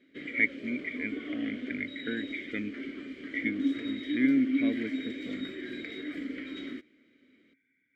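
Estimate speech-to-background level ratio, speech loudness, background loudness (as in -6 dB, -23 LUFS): 3.0 dB, -33.0 LUFS, -36.0 LUFS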